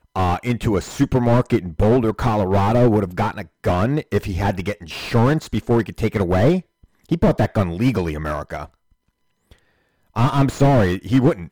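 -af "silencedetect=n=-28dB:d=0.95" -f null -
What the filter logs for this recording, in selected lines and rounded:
silence_start: 8.64
silence_end: 10.16 | silence_duration: 1.52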